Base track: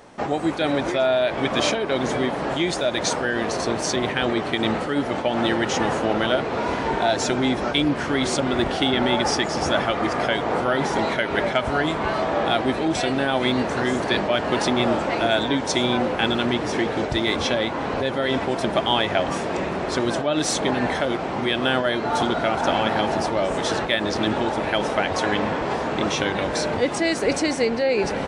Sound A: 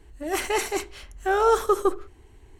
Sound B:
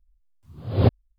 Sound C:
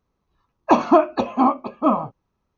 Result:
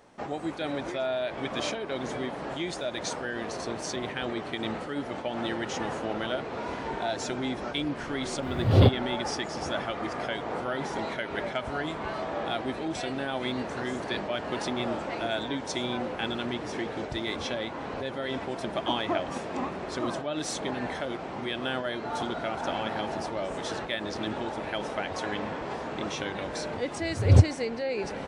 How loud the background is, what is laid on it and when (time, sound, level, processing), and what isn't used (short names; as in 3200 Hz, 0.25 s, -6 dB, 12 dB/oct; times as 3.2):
base track -10 dB
8 add B -8.5 dB + maximiser +16 dB
18.17 add C -17 dB
26.52 add B -6 dB + bell 86 Hz +12.5 dB 0.99 oct
not used: A